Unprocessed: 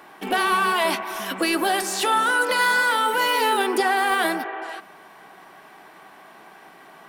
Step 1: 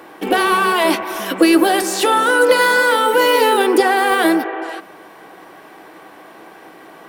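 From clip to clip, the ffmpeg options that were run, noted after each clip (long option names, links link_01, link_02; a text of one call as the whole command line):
ffmpeg -i in.wav -af "equalizer=frequency=100:width_type=o:width=0.33:gain=11,equalizer=frequency=315:width_type=o:width=0.33:gain=10,equalizer=frequency=500:width_type=o:width=0.33:gain=10,equalizer=frequency=16000:width_type=o:width=0.33:gain=4,volume=4.5dB" out.wav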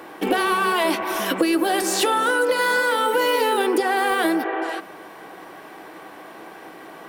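ffmpeg -i in.wav -af "acompressor=threshold=-17dB:ratio=6" out.wav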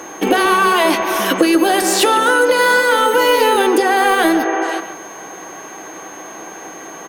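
ffmpeg -i in.wav -filter_complex "[0:a]asplit=2[link_01][link_02];[link_02]adelay=140,highpass=300,lowpass=3400,asoftclip=type=hard:threshold=-17dB,volume=-10dB[link_03];[link_01][link_03]amix=inputs=2:normalize=0,aeval=exprs='val(0)+0.00708*sin(2*PI*6400*n/s)':channel_layout=same,volume=6.5dB" out.wav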